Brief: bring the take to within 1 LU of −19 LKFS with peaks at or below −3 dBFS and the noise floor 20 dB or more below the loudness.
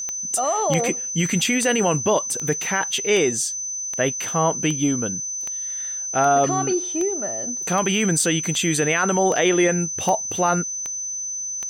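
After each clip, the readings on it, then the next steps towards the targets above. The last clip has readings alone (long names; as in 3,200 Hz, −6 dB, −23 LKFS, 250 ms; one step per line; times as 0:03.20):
number of clicks 16; interfering tone 6,100 Hz; level of the tone −26 dBFS; integrated loudness −21.0 LKFS; sample peak −8.5 dBFS; target loudness −19.0 LKFS
→ click removal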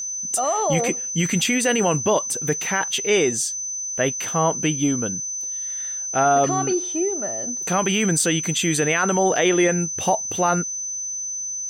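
number of clicks 0; interfering tone 6,100 Hz; level of the tone −26 dBFS
→ notch filter 6,100 Hz, Q 30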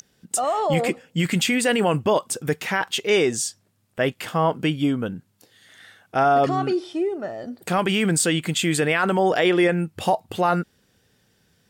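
interfering tone none found; integrated loudness −22.0 LKFS; sample peak −9.0 dBFS; target loudness −19.0 LKFS
→ level +3 dB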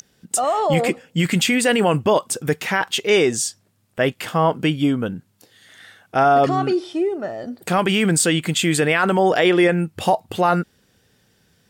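integrated loudness −19.0 LKFS; sample peak −6.0 dBFS; background noise floor −62 dBFS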